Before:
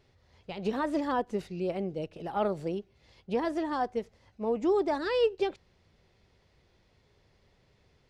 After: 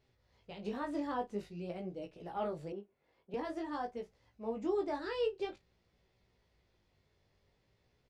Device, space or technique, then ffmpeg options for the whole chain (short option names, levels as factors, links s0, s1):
double-tracked vocal: -filter_complex "[0:a]asplit=2[s0][s1];[s1]adelay=34,volume=0.2[s2];[s0][s2]amix=inputs=2:normalize=0,flanger=delay=16:depth=4.9:speed=0.49,asettb=1/sr,asplit=3[s3][s4][s5];[s3]atrim=end=2.724[s6];[s4]atrim=start=2.72:end=3.34,asetpts=PTS-STARTPTS,afade=t=in:d=0.004:c=qsin,afade=t=out:st=0.616:d=0.004:c=qsin,acrossover=split=200 2100:gain=0.141 1 0.158[s7][s8][s9];[s7][s8][s9]amix=inputs=3:normalize=0[s10];[s5]atrim=start=3.336[s11];[s6][s10]acrossfade=d=0.004:c1=hsin:c2=qsin[s12];[s12][s11]acrossfade=d=0.004:c1=qsin:c2=hsin,volume=0.531"